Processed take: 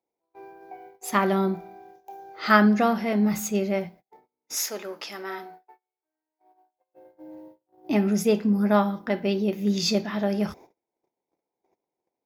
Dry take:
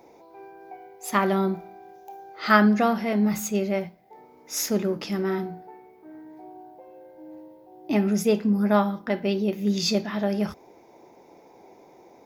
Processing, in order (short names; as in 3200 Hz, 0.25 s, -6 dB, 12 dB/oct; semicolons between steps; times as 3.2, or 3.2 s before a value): 4.55–6.94 HPF 670 Hz 12 dB/oct; gate -46 dBFS, range -35 dB